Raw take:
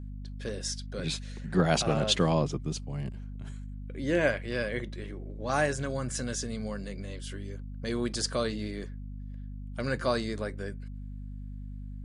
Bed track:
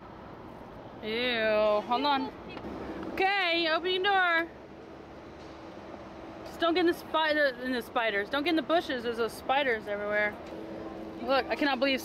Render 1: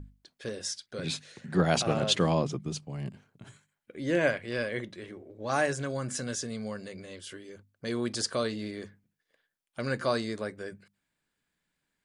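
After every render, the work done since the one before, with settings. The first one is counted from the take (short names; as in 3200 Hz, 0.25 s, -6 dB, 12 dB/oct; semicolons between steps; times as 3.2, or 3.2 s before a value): notches 50/100/150/200/250 Hz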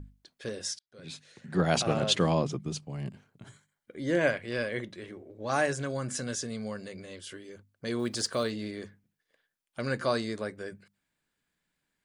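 0.79–1.76 fade in; 3.44–4.21 notch 2600 Hz, Q 6.2; 7.99–8.52 block floating point 7-bit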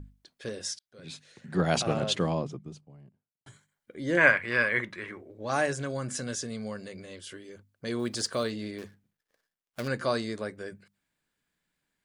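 1.72–3.46 studio fade out; 4.17–5.21 band shelf 1500 Hz +11.5 dB; 8.78–9.88 switching dead time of 0.15 ms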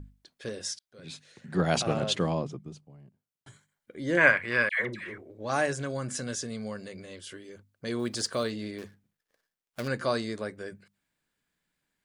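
4.69–5.18 dispersion lows, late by 0.111 s, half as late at 1100 Hz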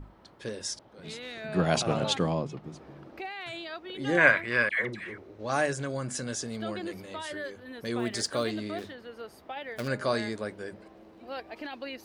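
add bed track -12 dB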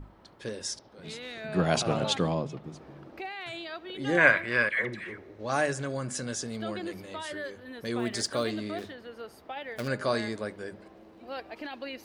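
analogue delay 71 ms, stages 2048, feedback 65%, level -23.5 dB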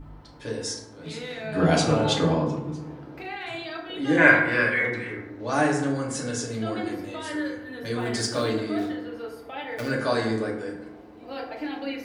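FDN reverb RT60 0.9 s, low-frequency decay 1.35×, high-frequency decay 0.45×, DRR -2.5 dB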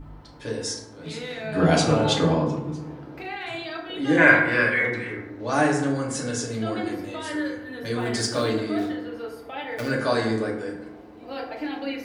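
gain +1.5 dB; limiter -2 dBFS, peak gain reduction 2.5 dB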